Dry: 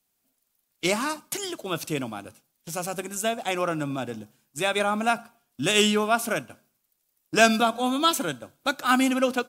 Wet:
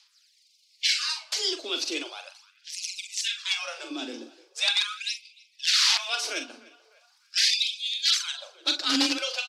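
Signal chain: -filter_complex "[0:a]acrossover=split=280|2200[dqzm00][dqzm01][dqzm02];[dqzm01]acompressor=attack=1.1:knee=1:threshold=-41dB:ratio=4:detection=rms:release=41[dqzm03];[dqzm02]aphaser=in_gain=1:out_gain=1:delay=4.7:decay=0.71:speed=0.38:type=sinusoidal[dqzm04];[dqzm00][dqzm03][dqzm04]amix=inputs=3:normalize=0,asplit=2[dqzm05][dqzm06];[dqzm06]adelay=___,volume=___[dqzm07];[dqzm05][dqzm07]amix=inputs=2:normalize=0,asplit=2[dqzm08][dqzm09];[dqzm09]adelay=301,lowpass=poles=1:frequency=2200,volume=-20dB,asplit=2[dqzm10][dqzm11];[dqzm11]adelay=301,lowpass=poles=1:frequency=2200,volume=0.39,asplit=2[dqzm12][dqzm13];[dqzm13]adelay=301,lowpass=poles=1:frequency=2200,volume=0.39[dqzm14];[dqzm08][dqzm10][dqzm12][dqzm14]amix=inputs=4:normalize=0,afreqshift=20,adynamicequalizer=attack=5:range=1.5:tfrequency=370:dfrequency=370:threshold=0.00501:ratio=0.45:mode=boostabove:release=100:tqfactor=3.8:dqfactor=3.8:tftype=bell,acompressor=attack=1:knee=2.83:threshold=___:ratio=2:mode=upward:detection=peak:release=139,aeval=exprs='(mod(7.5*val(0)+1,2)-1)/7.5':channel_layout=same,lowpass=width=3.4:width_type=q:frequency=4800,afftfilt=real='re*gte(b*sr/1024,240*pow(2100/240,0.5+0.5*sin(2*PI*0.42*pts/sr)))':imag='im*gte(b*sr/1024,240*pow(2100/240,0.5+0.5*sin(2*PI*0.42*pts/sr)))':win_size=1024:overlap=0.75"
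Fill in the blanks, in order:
43, -7.5dB, -43dB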